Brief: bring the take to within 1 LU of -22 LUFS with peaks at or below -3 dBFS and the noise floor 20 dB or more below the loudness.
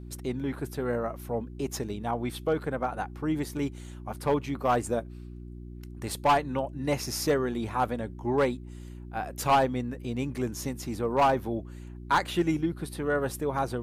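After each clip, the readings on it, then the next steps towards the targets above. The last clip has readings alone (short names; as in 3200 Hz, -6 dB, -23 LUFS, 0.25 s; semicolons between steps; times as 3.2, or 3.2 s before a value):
clipped 0.5%; flat tops at -17.0 dBFS; hum 60 Hz; harmonics up to 360 Hz; hum level -40 dBFS; loudness -29.5 LUFS; peak -17.0 dBFS; loudness target -22.0 LUFS
-> clip repair -17 dBFS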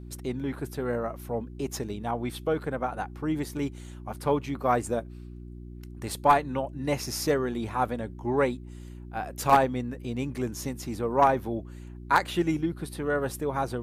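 clipped 0.0%; hum 60 Hz; harmonics up to 360 Hz; hum level -39 dBFS
-> de-hum 60 Hz, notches 6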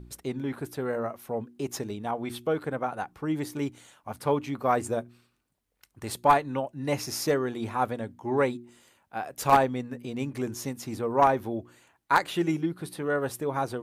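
hum none; loudness -29.0 LUFS; peak -8.0 dBFS; loudness target -22.0 LUFS
-> gain +7 dB; limiter -3 dBFS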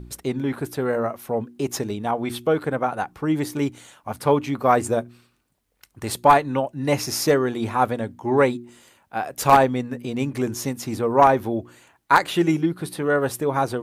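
loudness -22.5 LUFS; peak -3.0 dBFS; noise floor -66 dBFS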